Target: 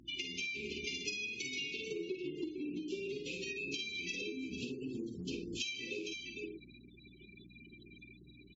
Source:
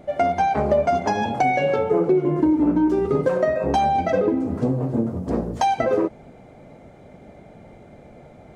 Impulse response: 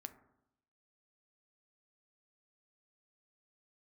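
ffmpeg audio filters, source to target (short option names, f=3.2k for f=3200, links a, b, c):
-filter_complex "[0:a]adynamicequalizer=threshold=0.00141:dfrequency=3000:dqfactor=7.9:tfrequency=3000:tqfactor=7.9:attack=5:release=100:ratio=0.375:range=4:mode=cutabove:tftype=bell,asplit=2[a][b];[b]adelay=50,volume=-4dB[c];[a][c]amix=inputs=2:normalize=0,aeval=exprs='0.531*(cos(1*acos(clip(val(0)/0.531,-1,1)))-cos(1*PI/2))+0.00376*(cos(6*acos(clip(val(0)/0.531,-1,1)))-cos(6*PI/2))':c=same,asuperstop=centerf=960:order=20:qfactor=0.51,aecho=1:1:455:0.224,aexciter=amount=10.3:drive=6.7:freq=2.4k,afftfilt=real='re*gte(hypot(re,im),0.02)':imag='im*gte(hypot(re,im),0.02)':win_size=1024:overlap=0.75,aeval=exprs='val(0)+0.01*(sin(2*PI*60*n/s)+sin(2*PI*2*60*n/s)/2+sin(2*PI*3*60*n/s)/3+sin(2*PI*4*60*n/s)/4+sin(2*PI*5*60*n/s)/5)':c=same,asplit=3[d][e][f];[d]bandpass=f=530:t=q:w=8,volume=0dB[g];[e]bandpass=f=1.84k:t=q:w=8,volume=-6dB[h];[f]bandpass=f=2.48k:t=q:w=8,volume=-9dB[i];[g][h][i]amix=inputs=3:normalize=0,equalizer=f=660:w=0.4:g=-5,acompressor=threshold=-50dB:ratio=8,volume=11.5dB" -ar 44100 -c:a aac -b:a 24k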